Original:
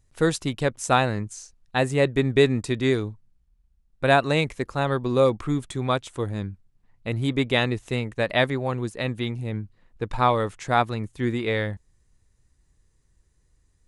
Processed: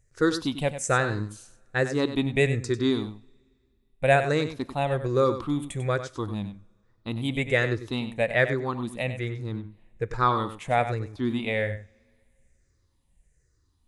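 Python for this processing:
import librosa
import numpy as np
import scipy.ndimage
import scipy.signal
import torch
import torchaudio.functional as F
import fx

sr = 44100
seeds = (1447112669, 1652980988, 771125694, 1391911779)

y = fx.spec_ripple(x, sr, per_octave=0.52, drift_hz=-1.2, depth_db=13)
y = y + 10.0 ** (-11.0 / 20.0) * np.pad(y, (int(96 * sr / 1000.0), 0))[:len(y)]
y = fx.rev_double_slope(y, sr, seeds[0], early_s=0.44, late_s=2.3, knee_db=-18, drr_db=18.0)
y = F.gain(torch.from_numpy(y), -4.5).numpy()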